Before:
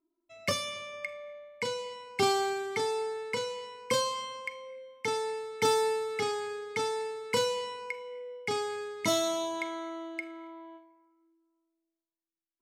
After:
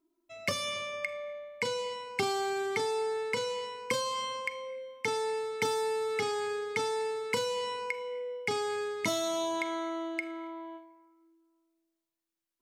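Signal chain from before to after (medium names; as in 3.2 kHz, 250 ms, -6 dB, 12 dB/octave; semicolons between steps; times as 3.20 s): compression 5:1, threshold -33 dBFS, peak gain reduction 10.5 dB; trim +4.5 dB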